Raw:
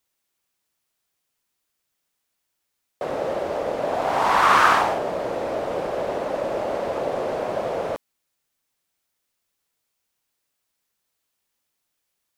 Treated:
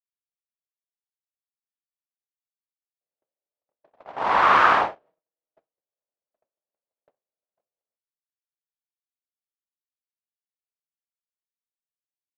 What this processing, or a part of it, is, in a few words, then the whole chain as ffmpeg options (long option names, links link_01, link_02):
hearing-loss simulation: -filter_complex "[0:a]asettb=1/sr,asplit=3[link_01][link_02][link_03];[link_01]atrim=end=5.054[link_04];[link_02]atrim=start=5.05:end=5.73,asetpts=PTS-STARTPTS,afade=type=in:duration=0.004:curve=qsin,afade=type=out:start_time=0.676:duration=0.004:curve=qsin,aecho=1:1:6.3:0.54,atrim=end_sample=29988[link_05];[link_03]atrim=start=5.726[link_06];[link_04][link_05]acrossfade=duration=0.004:curve1=hsin:curve2=qsin[link_07];[link_07][link_06]acrossfade=duration=0.004:curve1=qsin:curve2=hsin,agate=range=-41dB:threshold=-19dB:ratio=16:detection=peak,lowpass=3300,lowshelf=frequency=350:gain=-3.5,agate=range=-33dB:threshold=-47dB:ratio=3:detection=peak"